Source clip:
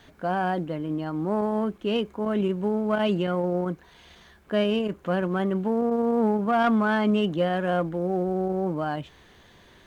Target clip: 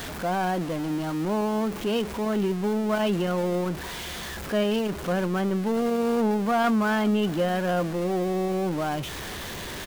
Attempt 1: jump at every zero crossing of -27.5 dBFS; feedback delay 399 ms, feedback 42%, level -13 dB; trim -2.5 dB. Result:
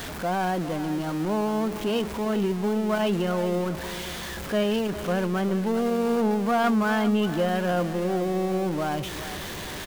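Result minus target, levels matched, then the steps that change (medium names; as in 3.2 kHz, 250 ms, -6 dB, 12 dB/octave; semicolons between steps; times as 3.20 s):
echo-to-direct +11 dB
change: feedback delay 399 ms, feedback 42%, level -24 dB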